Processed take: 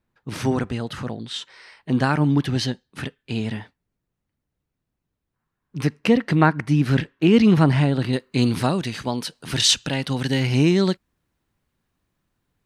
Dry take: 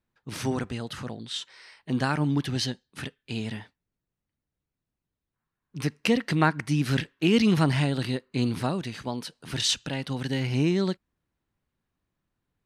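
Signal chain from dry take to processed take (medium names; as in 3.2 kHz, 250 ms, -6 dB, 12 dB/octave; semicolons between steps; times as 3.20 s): treble shelf 2.8 kHz -6.5 dB, from 5.99 s -11.5 dB, from 8.13 s +2 dB; trim +6.5 dB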